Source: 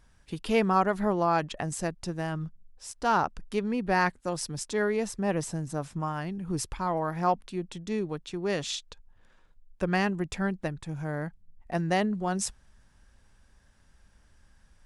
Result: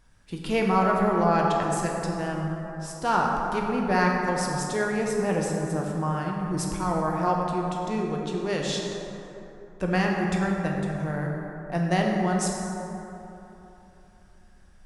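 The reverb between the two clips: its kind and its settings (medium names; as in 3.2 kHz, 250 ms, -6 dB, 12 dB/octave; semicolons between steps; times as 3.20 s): plate-style reverb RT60 3.3 s, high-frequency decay 0.4×, DRR -1 dB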